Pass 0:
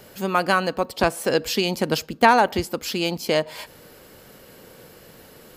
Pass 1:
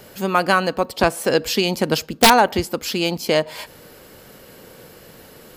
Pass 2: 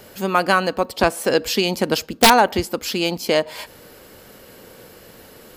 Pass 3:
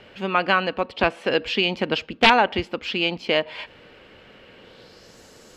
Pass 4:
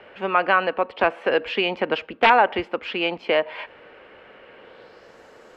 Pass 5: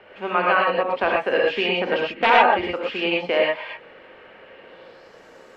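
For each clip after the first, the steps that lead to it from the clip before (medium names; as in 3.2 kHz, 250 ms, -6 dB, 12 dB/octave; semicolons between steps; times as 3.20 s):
integer overflow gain 4.5 dB; trim +3 dB
peaking EQ 150 Hz -6 dB 0.28 oct
low-pass sweep 2.8 kHz -> 6.8 kHz, 4.57–5.18 s; trim -4.5 dB
three-band isolator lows -13 dB, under 360 Hz, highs -18 dB, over 2.4 kHz; in parallel at -3 dB: peak limiter -16 dBFS, peak gain reduction 10.5 dB
gated-style reverb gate 140 ms rising, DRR -2.5 dB; trim -3 dB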